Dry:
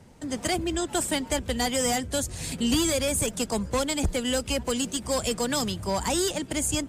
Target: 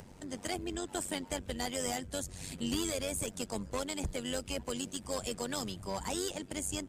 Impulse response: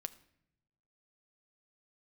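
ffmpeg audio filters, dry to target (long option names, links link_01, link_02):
-af "tremolo=f=95:d=0.71,acompressor=mode=upward:threshold=-35dB:ratio=2.5,volume=-7dB"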